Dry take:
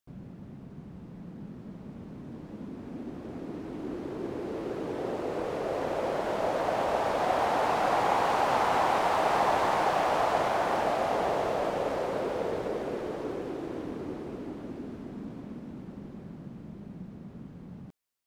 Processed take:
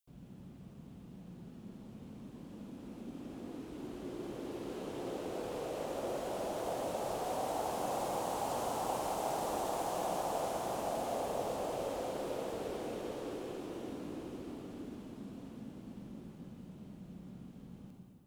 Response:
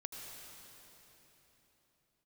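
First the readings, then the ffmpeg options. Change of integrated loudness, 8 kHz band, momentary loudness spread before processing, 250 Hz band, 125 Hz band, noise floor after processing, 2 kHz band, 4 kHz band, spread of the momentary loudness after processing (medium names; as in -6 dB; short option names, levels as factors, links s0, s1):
-10.0 dB, +0.5 dB, 19 LU, -6.5 dB, -7.0 dB, -53 dBFS, -15.5 dB, -8.0 dB, 15 LU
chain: -filter_complex "[0:a]acrossover=split=310|840|5400[s0][s1][s2][s3];[s2]acompressor=threshold=0.00794:ratio=6[s4];[s0][s1][s4][s3]amix=inputs=4:normalize=0,aexciter=amount=1.7:drive=7.7:freq=2700[s5];[1:a]atrim=start_sample=2205,asetrate=83790,aresample=44100[s6];[s5][s6]afir=irnorm=-1:irlink=0"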